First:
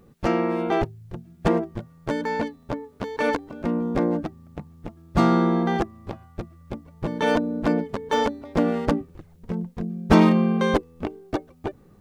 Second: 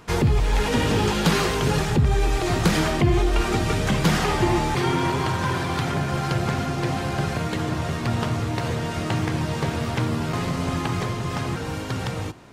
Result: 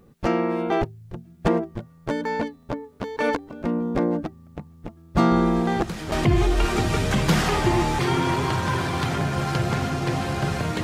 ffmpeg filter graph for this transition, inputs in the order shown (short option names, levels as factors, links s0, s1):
-filter_complex "[1:a]asplit=2[s0][s1];[0:a]apad=whole_dur=10.83,atrim=end=10.83,atrim=end=6.122[s2];[s1]atrim=start=2.878:end=7.59[s3];[s0]atrim=start=2.07:end=2.88,asetpts=PTS-STARTPTS,volume=0.224,afade=t=in:d=0.004:c=hsin,afade=t=out:st=0.806:d=0.004:c=hsin,adelay=5310[s4];[s2][s3]acrossfade=d=0.004:c1=hsin:c2=hsin[s5];[s5][s4]amix=inputs=2:normalize=0"